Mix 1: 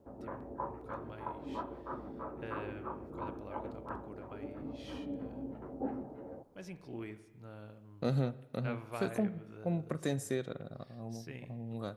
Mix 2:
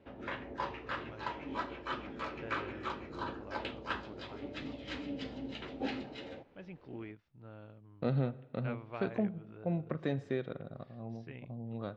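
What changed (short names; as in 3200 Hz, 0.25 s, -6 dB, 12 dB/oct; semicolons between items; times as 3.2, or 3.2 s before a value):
first voice: send off; background: remove LPF 1100 Hz 24 dB/oct; master: add LPF 3500 Hz 24 dB/oct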